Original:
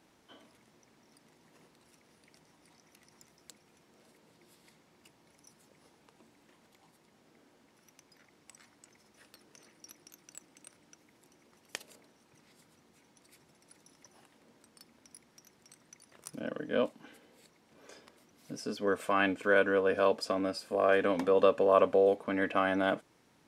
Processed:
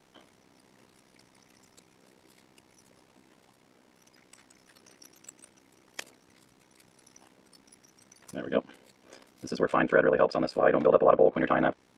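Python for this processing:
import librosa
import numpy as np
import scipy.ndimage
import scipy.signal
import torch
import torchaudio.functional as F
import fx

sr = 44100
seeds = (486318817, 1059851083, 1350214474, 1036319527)

y = fx.env_lowpass_down(x, sr, base_hz=1800.0, full_db=-23.5)
y = fx.stretch_vocoder(y, sr, factor=0.51)
y = y * np.sin(2.0 * np.pi * 32.0 * np.arange(len(y)) / sr)
y = F.gain(torch.from_numpy(y), 8.0).numpy()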